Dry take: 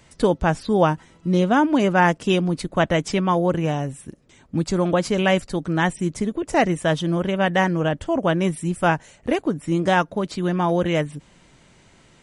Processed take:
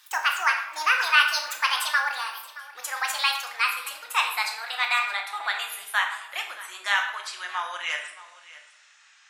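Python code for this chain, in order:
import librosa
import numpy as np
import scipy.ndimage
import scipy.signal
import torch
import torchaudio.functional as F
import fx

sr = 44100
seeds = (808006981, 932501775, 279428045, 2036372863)

p1 = fx.speed_glide(x, sr, from_pct=179, to_pct=84)
p2 = scipy.signal.sosfilt(scipy.signal.butter(4, 1200.0, 'highpass', fs=sr, output='sos'), p1)
p3 = p2 + fx.echo_single(p2, sr, ms=623, db=-18.0, dry=0)
y = fx.room_shoebox(p3, sr, seeds[0], volume_m3=270.0, walls='mixed', distance_m=0.91)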